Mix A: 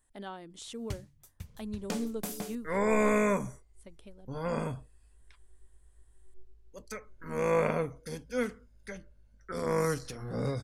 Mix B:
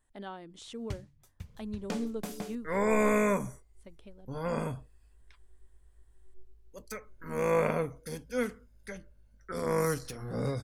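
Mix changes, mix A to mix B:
second sound: remove distance through air 65 m; master: add treble shelf 7.4 kHz -11 dB

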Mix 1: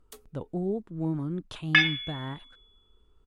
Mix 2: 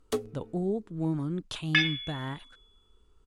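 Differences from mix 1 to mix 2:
first sound: remove pre-emphasis filter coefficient 0.97; second sound -7.5 dB; master: add peaking EQ 7.1 kHz +8 dB 2.7 oct

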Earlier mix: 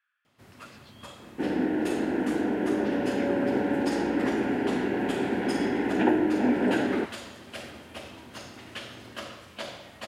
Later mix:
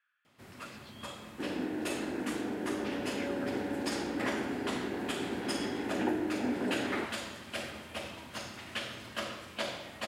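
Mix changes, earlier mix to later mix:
first sound: send +11.5 dB; second sound -9.0 dB

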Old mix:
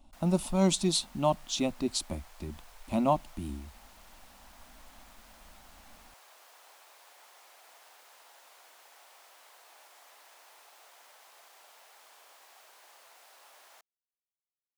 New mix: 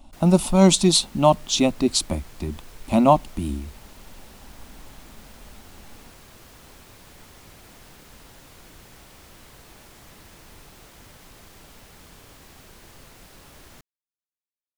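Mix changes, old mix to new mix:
speech +10.5 dB; background: remove ladder high-pass 580 Hz, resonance 35%

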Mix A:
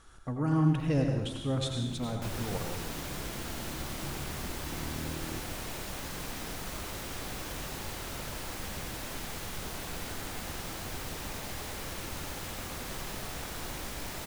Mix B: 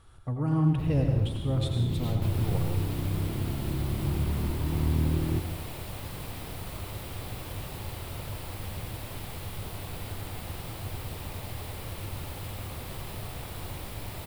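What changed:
first sound +10.5 dB; master: add fifteen-band graphic EQ 100 Hz +12 dB, 250 Hz -3 dB, 1.6 kHz -6 dB, 6.3 kHz -11 dB

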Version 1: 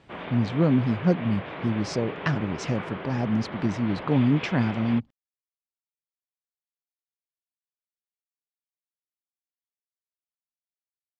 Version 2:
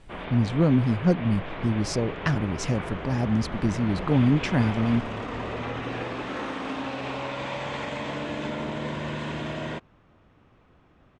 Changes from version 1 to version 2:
second sound: unmuted; master: remove band-pass 110–5200 Hz

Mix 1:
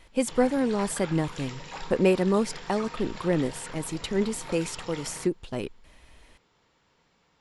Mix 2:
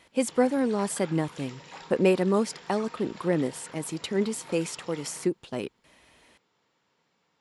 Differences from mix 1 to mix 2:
background -5.0 dB; master: add high-pass 140 Hz 12 dB/octave

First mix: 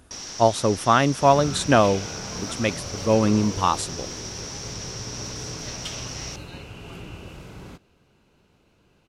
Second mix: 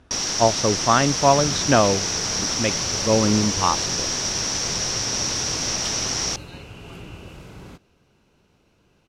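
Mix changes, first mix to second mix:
speech: add low-pass 4.1 kHz 12 dB/octave; first sound +11.5 dB

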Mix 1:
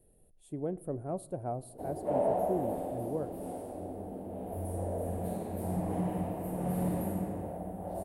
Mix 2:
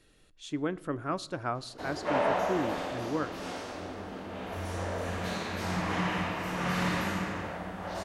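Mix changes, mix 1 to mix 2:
speech: add peaking EQ 300 Hz +9 dB 0.25 oct; master: remove FFT filter 740 Hz 0 dB, 1.2 kHz -22 dB, 6.2 kHz -25 dB, 9.5 kHz +5 dB

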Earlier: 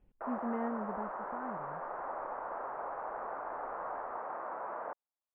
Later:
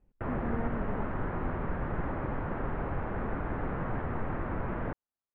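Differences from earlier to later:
background: remove Butterworth band-pass 850 Hz, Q 1.2; master: add distance through air 310 m

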